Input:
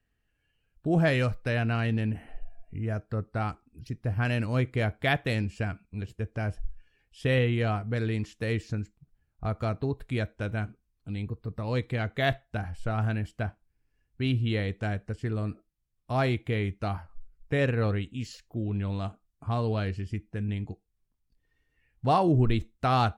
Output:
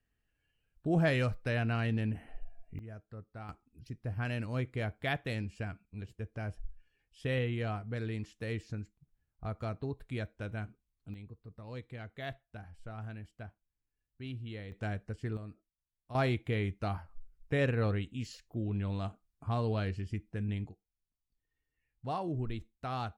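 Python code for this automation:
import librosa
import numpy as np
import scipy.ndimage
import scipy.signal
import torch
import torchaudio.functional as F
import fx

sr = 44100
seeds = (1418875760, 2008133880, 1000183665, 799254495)

y = fx.gain(x, sr, db=fx.steps((0.0, -4.5), (2.79, -16.0), (3.49, -8.0), (11.14, -15.0), (14.72, -6.0), (15.37, -14.0), (16.15, -4.0), (20.69, -13.0)))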